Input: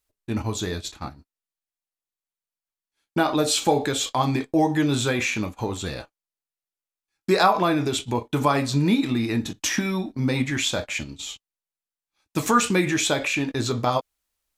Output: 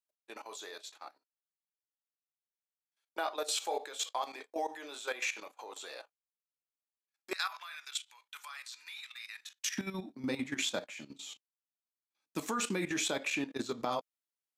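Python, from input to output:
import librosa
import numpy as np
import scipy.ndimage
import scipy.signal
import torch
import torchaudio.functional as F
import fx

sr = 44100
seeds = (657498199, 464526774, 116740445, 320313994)

y = fx.highpass(x, sr, hz=fx.steps((0.0, 480.0), (7.33, 1400.0), (9.78, 180.0)), slope=24)
y = fx.level_steps(y, sr, step_db=13)
y = F.gain(torch.from_numpy(y), -7.0).numpy()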